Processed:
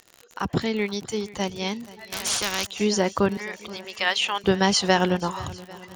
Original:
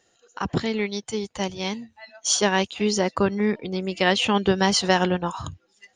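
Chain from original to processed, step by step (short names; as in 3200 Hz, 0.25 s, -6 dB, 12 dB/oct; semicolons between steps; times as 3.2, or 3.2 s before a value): 3.37–4.44 HPF 900 Hz 12 dB/oct; crackle 63/s -32 dBFS; swung echo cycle 0.796 s, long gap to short 1.5:1, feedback 32%, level -19.5 dB; 2.12–2.67 spectral compressor 4:1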